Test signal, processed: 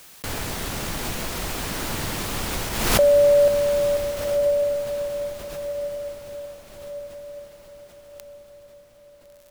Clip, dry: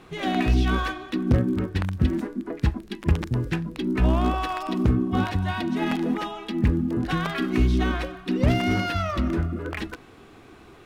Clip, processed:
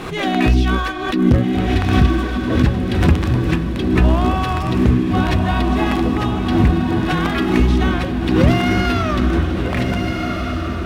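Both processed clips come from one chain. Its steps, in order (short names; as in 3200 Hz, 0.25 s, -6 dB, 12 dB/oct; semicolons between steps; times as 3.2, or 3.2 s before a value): diffused feedback echo 1.433 s, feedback 41%, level -4 dB; backwards sustainer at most 48 dB/s; gain +5.5 dB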